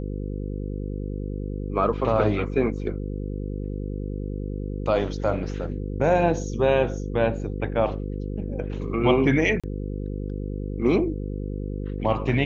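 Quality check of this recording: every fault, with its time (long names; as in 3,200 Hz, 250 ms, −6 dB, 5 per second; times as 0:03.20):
mains buzz 50 Hz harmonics 10 −30 dBFS
0:09.60–0:09.64: drop-out 36 ms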